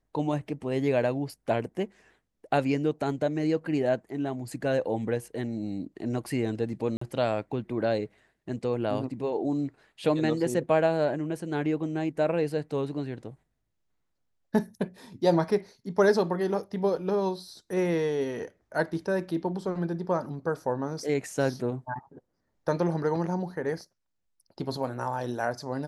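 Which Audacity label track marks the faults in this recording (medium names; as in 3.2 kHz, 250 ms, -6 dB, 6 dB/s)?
6.970000	7.010000	dropout 44 ms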